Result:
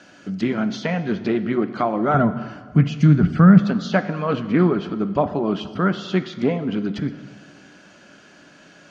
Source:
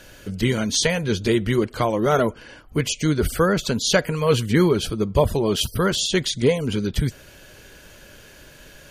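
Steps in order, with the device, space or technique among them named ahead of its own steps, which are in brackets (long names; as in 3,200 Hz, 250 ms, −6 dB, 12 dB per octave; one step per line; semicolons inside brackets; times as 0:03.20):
treble cut that deepens with the level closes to 2,300 Hz, closed at −18.5 dBFS
full-range speaker at full volume (highs frequency-modulated by the lows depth 0.13 ms; loudspeaker in its box 170–6,600 Hz, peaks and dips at 190 Hz +10 dB, 290 Hz +8 dB, 480 Hz −5 dB, 720 Hz +7 dB, 1,300 Hz +7 dB, 3,600 Hz −3 dB)
0:02.14–0:03.66: low shelf with overshoot 230 Hz +12 dB, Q 1.5
dense smooth reverb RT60 1.7 s, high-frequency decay 0.75×, DRR 11 dB
level −3 dB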